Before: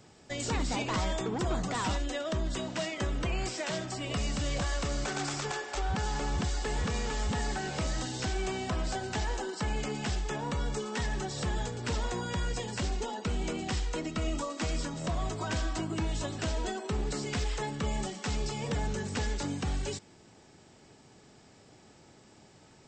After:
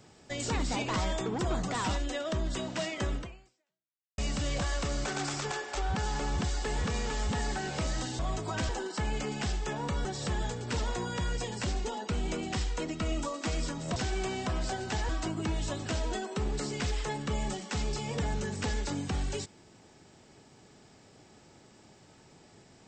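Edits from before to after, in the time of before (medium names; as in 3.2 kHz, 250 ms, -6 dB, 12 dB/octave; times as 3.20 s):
3.15–4.18 s: fade out exponential
8.19–9.32 s: swap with 15.12–15.62 s
10.68–11.21 s: delete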